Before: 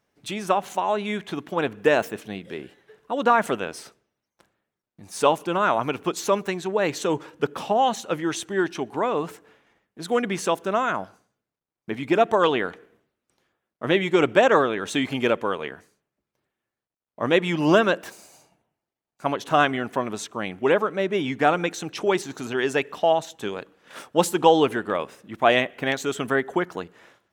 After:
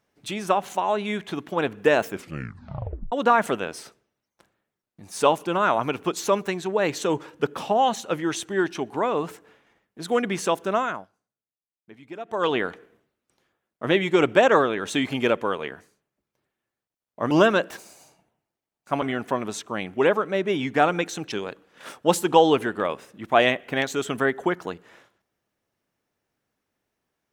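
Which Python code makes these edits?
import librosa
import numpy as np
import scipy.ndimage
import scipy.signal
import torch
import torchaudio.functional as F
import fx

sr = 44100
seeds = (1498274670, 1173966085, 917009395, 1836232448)

y = fx.edit(x, sr, fx.tape_stop(start_s=2.06, length_s=1.06),
    fx.fade_down_up(start_s=10.77, length_s=1.8, db=-17.5, fade_s=0.31),
    fx.cut(start_s=17.31, length_s=0.33),
    fx.cut(start_s=19.35, length_s=0.32),
    fx.cut(start_s=21.97, length_s=1.45), tone=tone)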